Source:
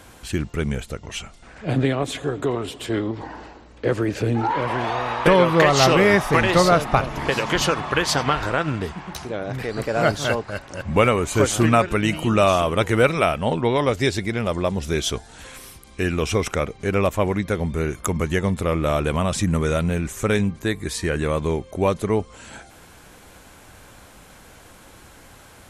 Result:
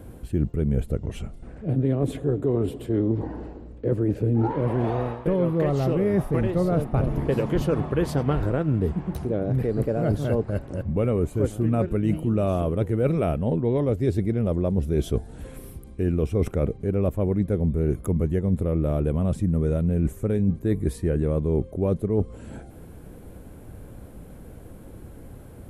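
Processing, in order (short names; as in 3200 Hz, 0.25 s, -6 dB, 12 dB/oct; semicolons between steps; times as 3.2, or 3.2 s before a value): EQ curve 140 Hz 0 dB, 470 Hz -4 dB, 930 Hz -17 dB, 6300 Hz -26 dB, 11000 Hz -13 dB; reverse; compressor 10:1, threshold -27 dBFS, peak gain reduction 13.5 dB; reverse; gain +8.5 dB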